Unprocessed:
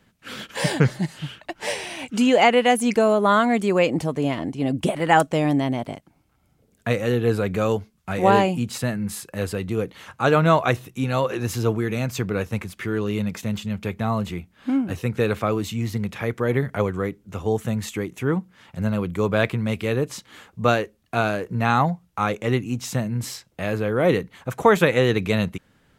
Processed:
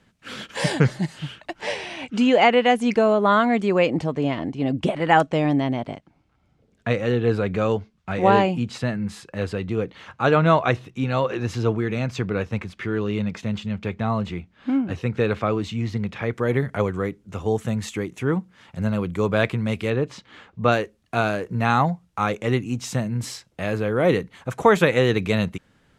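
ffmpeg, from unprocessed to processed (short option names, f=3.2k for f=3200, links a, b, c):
-af "asetnsamples=n=441:p=0,asendcmd='1.61 lowpass f 4700;16.33 lowpass f 9300;19.9 lowpass f 3900;20.72 lowpass f 10000',lowpass=9.2k"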